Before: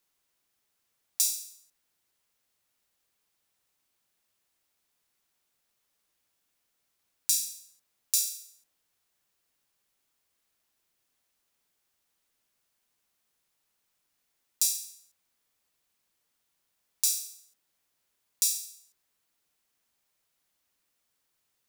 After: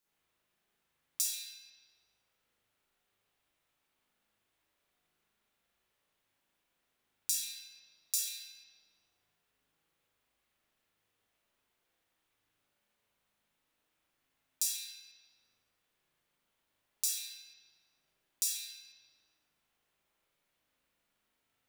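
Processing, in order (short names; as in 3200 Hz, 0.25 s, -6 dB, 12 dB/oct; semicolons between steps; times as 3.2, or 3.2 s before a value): spring tank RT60 1.3 s, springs 38/57 ms, chirp 35 ms, DRR -8.5 dB; gain -7 dB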